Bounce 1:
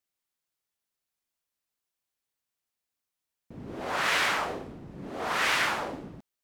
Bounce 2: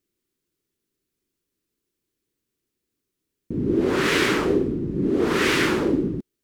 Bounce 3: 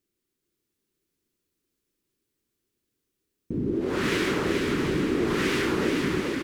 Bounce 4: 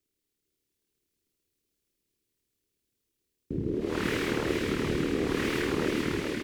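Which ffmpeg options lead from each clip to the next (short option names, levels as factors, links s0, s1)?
-af "lowshelf=f=510:t=q:w=3:g=11,volume=1.58"
-filter_complex "[0:a]acompressor=threshold=0.0794:ratio=6,asplit=2[s0][s1];[s1]aecho=0:1:430|731|941.7|1089|1192:0.631|0.398|0.251|0.158|0.1[s2];[s0][s2]amix=inputs=2:normalize=0,volume=0.841"
-filter_complex "[0:a]acrossover=split=160|1500|2100[s0][s1][s2][s3];[s1]aeval=exprs='val(0)*sin(2*PI*38*n/s)':c=same[s4];[s3]asoftclip=type=tanh:threshold=0.0119[s5];[s0][s4][s2][s5]amix=inputs=4:normalize=0"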